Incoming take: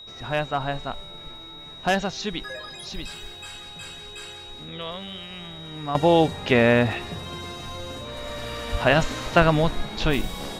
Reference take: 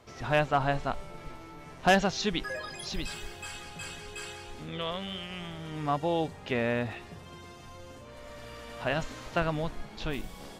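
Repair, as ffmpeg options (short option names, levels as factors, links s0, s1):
-filter_complex "[0:a]bandreject=f=3800:w=30,asplit=3[s0][s1][s2];[s0]afade=t=out:st=8.71:d=0.02[s3];[s1]highpass=f=140:w=0.5412,highpass=f=140:w=1.3066,afade=t=in:st=8.71:d=0.02,afade=t=out:st=8.83:d=0.02[s4];[s2]afade=t=in:st=8.83:d=0.02[s5];[s3][s4][s5]amix=inputs=3:normalize=0,agate=range=0.0891:threshold=0.0224,asetnsamples=n=441:p=0,asendcmd='5.95 volume volume -11.5dB',volume=1"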